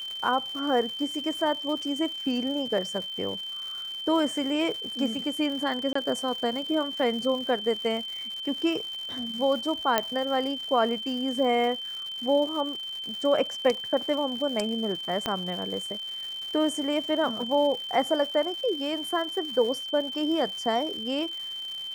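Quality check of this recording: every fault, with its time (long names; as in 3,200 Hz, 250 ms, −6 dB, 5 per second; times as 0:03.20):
surface crackle 240 per second −35 dBFS
whistle 3,100 Hz −33 dBFS
0:01.82: drop-out 2.5 ms
0:05.93–0:05.95: drop-out 24 ms
0:09.98: click −7 dBFS
0:15.26: click −13 dBFS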